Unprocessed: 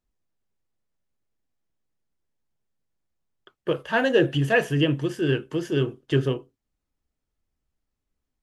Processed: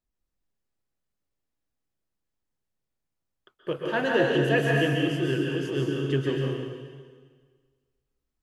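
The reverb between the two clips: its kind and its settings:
dense smooth reverb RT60 1.6 s, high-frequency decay 1×, pre-delay 115 ms, DRR −2 dB
level −5.5 dB

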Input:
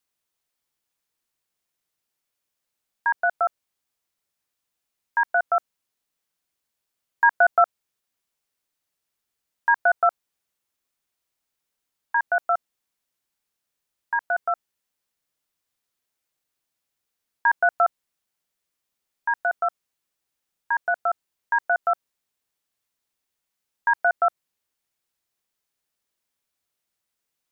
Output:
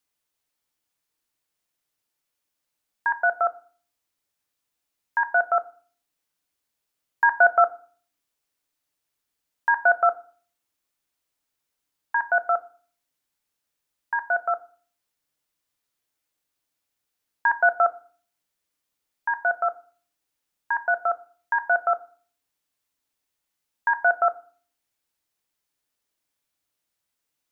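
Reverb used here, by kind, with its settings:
feedback delay network reverb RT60 0.44 s, low-frequency decay 1.6×, high-frequency decay 0.85×, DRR 10 dB

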